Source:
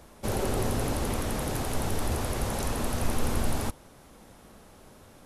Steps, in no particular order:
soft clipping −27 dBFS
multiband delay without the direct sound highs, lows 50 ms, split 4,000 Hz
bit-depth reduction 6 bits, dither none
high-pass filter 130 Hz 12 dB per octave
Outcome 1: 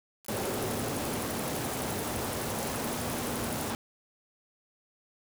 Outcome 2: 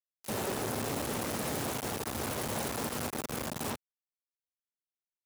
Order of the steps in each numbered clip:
high-pass filter, then soft clipping, then multiband delay without the direct sound, then bit-depth reduction
multiband delay without the direct sound, then soft clipping, then bit-depth reduction, then high-pass filter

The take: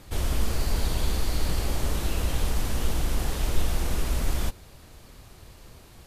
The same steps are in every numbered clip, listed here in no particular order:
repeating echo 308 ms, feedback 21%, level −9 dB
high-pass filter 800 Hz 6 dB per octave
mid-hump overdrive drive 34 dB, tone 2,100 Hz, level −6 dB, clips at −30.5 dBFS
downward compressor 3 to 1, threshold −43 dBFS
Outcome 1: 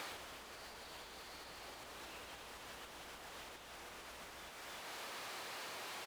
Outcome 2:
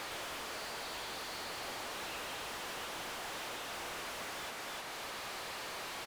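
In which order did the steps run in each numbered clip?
repeating echo, then mid-hump overdrive, then downward compressor, then high-pass filter
repeating echo, then downward compressor, then high-pass filter, then mid-hump overdrive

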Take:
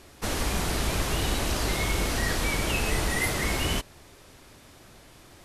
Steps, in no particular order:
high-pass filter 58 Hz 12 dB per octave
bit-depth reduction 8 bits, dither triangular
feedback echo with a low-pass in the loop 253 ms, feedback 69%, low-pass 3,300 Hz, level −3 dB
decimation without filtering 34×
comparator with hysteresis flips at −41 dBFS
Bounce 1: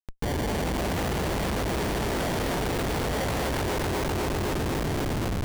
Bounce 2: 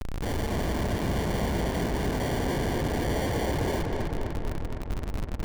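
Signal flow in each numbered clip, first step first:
high-pass filter, then bit-depth reduction, then decimation without filtering, then feedback echo with a low-pass in the loop, then comparator with hysteresis
bit-depth reduction, then high-pass filter, then decimation without filtering, then comparator with hysteresis, then feedback echo with a low-pass in the loop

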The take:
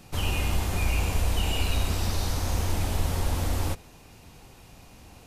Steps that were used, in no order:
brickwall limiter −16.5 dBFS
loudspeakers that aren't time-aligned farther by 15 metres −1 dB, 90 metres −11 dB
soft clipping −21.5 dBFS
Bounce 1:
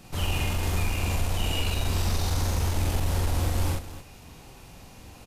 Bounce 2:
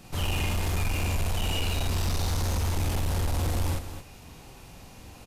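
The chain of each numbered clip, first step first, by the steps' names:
brickwall limiter, then soft clipping, then loudspeakers that aren't time-aligned
brickwall limiter, then loudspeakers that aren't time-aligned, then soft clipping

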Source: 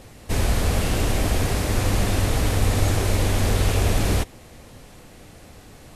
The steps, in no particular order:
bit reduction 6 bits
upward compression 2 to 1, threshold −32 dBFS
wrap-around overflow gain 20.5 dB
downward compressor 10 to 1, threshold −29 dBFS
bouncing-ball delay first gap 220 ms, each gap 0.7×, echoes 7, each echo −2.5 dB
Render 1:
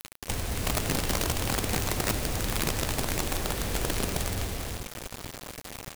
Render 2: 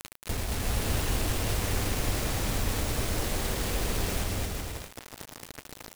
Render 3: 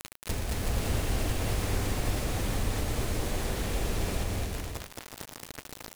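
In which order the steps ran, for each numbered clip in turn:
downward compressor, then bouncing-ball delay, then bit reduction, then upward compression, then wrap-around overflow
downward compressor, then wrap-around overflow, then bit reduction, then bouncing-ball delay, then upward compression
bit reduction, then downward compressor, then wrap-around overflow, then upward compression, then bouncing-ball delay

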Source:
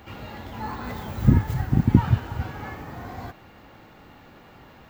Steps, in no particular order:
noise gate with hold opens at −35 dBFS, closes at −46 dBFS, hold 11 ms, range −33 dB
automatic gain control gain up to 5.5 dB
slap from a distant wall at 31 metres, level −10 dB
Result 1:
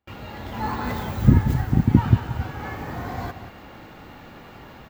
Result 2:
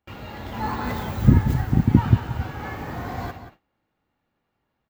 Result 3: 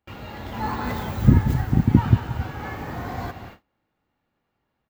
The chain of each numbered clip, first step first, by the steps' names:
slap from a distant wall, then automatic gain control, then noise gate with hold
noise gate with hold, then slap from a distant wall, then automatic gain control
slap from a distant wall, then noise gate with hold, then automatic gain control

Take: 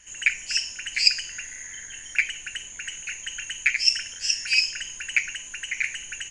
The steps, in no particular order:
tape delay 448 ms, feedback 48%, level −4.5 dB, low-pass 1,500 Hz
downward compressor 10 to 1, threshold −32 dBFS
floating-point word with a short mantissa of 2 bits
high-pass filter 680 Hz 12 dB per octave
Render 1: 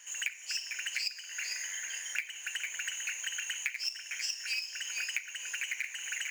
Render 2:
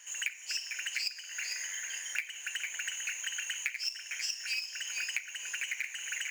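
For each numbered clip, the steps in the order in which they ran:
tape delay, then downward compressor, then floating-point word with a short mantissa, then high-pass filter
tape delay, then floating-point word with a short mantissa, then downward compressor, then high-pass filter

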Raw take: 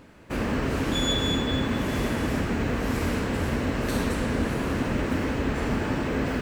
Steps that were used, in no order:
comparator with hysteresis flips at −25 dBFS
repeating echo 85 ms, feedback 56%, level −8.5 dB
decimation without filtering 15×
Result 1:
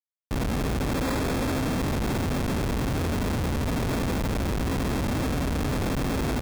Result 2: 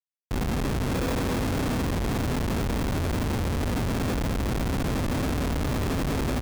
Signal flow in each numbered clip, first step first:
repeating echo, then comparator with hysteresis, then decimation without filtering
decimation without filtering, then repeating echo, then comparator with hysteresis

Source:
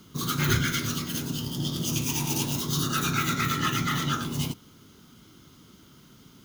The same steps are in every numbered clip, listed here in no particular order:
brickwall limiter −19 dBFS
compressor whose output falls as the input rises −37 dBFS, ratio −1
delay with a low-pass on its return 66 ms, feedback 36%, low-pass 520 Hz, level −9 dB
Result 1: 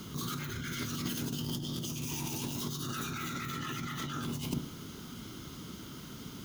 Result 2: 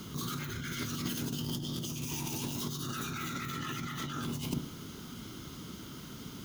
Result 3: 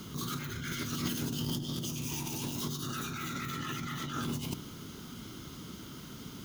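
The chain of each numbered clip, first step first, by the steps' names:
delay with a low-pass on its return, then brickwall limiter, then compressor whose output falls as the input rises
brickwall limiter, then delay with a low-pass on its return, then compressor whose output falls as the input rises
brickwall limiter, then compressor whose output falls as the input rises, then delay with a low-pass on its return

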